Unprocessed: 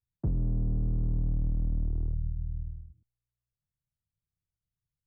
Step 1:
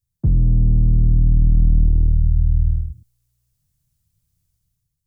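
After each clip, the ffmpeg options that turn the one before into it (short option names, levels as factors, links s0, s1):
-af "dynaudnorm=f=130:g=7:m=3.16,bass=f=250:g=12,treble=f=4000:g=12,alimiter=limit=0.398:level=0:latency=1:release=59"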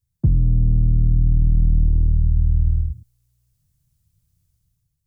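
-af "equalizer=f=80:w=0.36:g=4.5,acompressor=threshold=0.251:ratio=5"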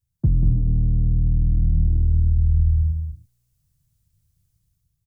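-af "aecho=1:1:189.5|227.4:0.501|0.316,volume=0.794"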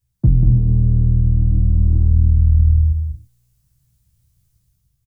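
-filter_complex "[0:a]asplit=2[s0][s1];[s1]adelay=16,volume=0.596[s2];[s0][s2]amix=inputs=2:normalize=0,volume=1.68"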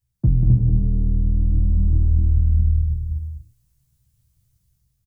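-af "aecho=1:1:259:0.562,volume=0.631"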